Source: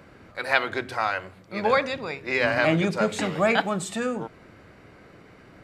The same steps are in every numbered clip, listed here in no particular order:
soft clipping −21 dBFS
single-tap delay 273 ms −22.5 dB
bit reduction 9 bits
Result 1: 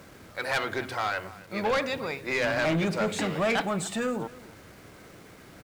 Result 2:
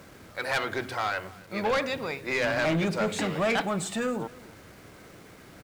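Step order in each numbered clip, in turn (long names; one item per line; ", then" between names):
bit reduction, then single-tap delay, then soft clipping
bit reduction, then soft clipping, then single-tap delay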